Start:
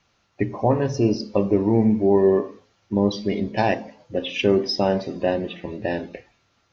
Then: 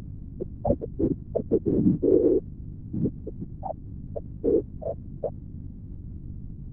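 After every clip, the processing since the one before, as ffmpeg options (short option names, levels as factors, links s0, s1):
-af "afftfilt=real='re*gte(hypot(re,im),0.891)':imag='im*gte(hypot(re,im),0.891)':win_size=1024:overlap=0.75,aeval=exprs='val(0)+0.0178*(sin(2*PI*50*n/s)+sin(2*PI*2*50*n/s)/2+sin(2*PI*3*50*n/s)/3+sin(2*PI*4*50*n/s)/4+sin(2*PI*5*50*n/s)/5)':c=same,afftfilt=real='hypot(re,im)*cos(2*PI*random(0))':imag='hypot(re,im)*sin(2*PI*random(1))':win_size=512:overlap=0.75,volume=1.78"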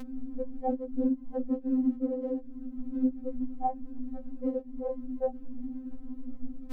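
-af "acompressor=threshold=0.0316:ratio=4,afftfilt=real='re*3.46*eq(mod(b,12),0)':imag='im*3.46*eq(mod(b,12),0)':win_size=2048:overlap=0.75,volume=2.37"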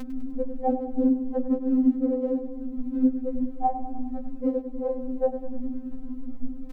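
-af "aecho=1:1:100|200|300|400|500|600:0.266|0.152|0.0864|0.0493|0.0281|0.016,volume=1.88"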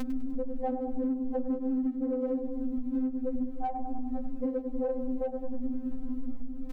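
-filter_complex "[0:a]asplit=2[s0][s1];[s1]asoftclip=type=tanh:threshold=0.0596,volume=0.447[s2];[s0][s2]amix=inputs=2:normalize=0,alimiter=limit=0.0944:level=0:latency=1:release=383,acompressor=threshold=0.0501:ratio=6"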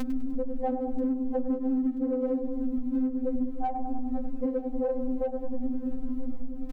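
-af "aecho=1:1:983|1966|2949:0.1|0.042|0.0176,volume=1.33"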